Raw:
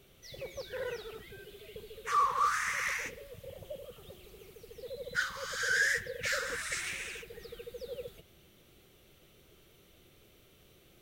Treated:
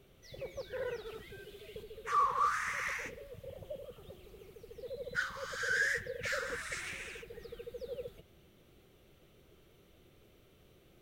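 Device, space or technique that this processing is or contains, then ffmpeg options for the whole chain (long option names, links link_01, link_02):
behind a face mask: -filter_complex "[0:a]highshelf=frequency=2200:gain=-8,asettb=1/sr,asplit=3[link_01][link_02][link_03];[link_01]atrim=end=1.064[link_04];[link_02]atrim=start=1.06:end=1.83,asetpts=PTS-STARTPTS,afade=type=in:duration=0.004:curve=qsin,afade=type=out:start_time=0.766:duration=0.004:curve=qsin,equalizer=frequency=6400:width=0.33:gain=5.5[link_05];[link_03]atrim=start=1.826[link_06];[link_04][link_05]acrossfade=duration=0.004:curve1=hsin:curve2=qsin[link_07];[link_07][link_06]acrossfade=duration=0.004:curve1=qsin:curve2=hsin"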